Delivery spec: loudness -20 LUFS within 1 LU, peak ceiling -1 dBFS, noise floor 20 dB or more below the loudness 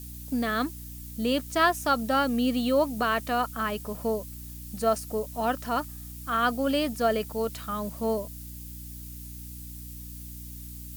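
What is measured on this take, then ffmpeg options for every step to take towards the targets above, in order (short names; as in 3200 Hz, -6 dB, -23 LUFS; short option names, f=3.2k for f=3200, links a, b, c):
hum 60 Hz; harmonics up to 300 Hz; hum level -40 dBFS; noise floor -41 dBFS; noise floor target -48 dBFS; loudness -27.5 LUFS; peak -11.0 dBFS; loudness target -20.0 LUFS
-> -af "bandreject=f=60:t=h:w=6,bandreject=f=120:t=h:w=6,bandreject=f=180:t=h:w=6,bandreject=f=240:t=h:w=6,bandreject=f=300:t=h:w=6"
-af "afftdn=nr=7:nf=-41"
-af "volume=7.5dB"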